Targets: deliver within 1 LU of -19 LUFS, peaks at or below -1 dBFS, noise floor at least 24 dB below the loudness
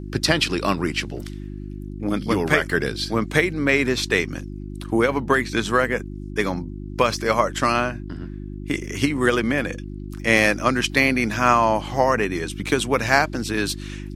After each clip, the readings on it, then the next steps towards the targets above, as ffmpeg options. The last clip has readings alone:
hum 50 Hz; harmonics up to 350 Hz; hum level -30 dBFS; loudness -21.5 LUFS; peak -1.0 dBFS; loudness target -19.0 LUFS
-> -af "bandreject=f=50:t=h:w=4,bandreject=f=100:t=h:w=4,bandreject=f=150:t=h:w=4,bandreject=f=200:t=h:w=4,bandreject=f=250:t=h:w=4,bandreject=f=300:t=h:w=4,bandreject=f=350:t=h:w=4"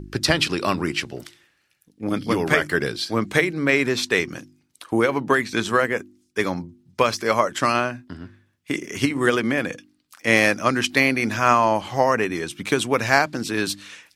hum none; loudness -21.5 LUFS; peak -1.5 dBFS; loudness target -19.0 LUFS
-> -af "volume=2.5dB,alimiter=limit=-1dB:level=0:latency=1"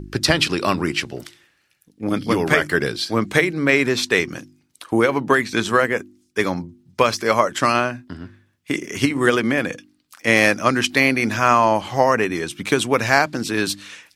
loudness -19.0 LUFS; peak -1.0 dBFS; noise floor -64 dBFS

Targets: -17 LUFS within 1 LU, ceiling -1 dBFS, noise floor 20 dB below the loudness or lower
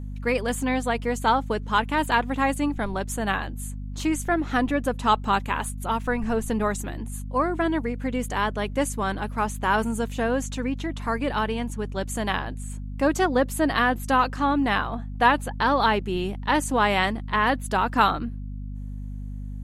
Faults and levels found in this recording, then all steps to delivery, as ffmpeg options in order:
hum 50 Hz; harmonics up to 250 Hz; hum level -31 dBFS; loudness -25.0 LUFS; peak -6.5 dBFS; loudness target -17.0 LUFS
-> -af "bandreject=f=50:t=h:w=4,bandreject=f=100:t=h:w=4,bandreject=f=150:t=h:w=4,bandreject=f=200:t=h:w=4,bandreject=f=250:t=h:w=4"
-af "volume=8dB,alimiter=limit=-1dB:level=0:latency=1"

